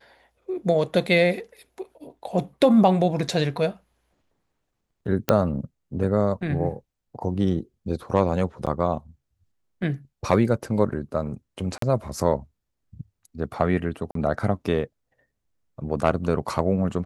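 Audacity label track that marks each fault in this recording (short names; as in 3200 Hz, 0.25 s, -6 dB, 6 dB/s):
5.290000	5.290000	pop -4 dBFS
8.660000	8.670000	gap 7.2 ms
11.780000	11.820000	gap 43 ms
14.110000	14.150000	gap 43 ms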